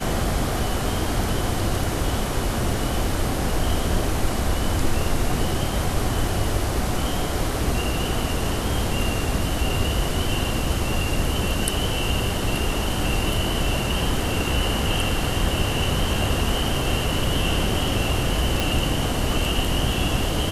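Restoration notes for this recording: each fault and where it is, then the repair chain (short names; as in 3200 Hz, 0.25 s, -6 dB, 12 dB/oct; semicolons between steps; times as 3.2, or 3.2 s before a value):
18.6 pop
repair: de-click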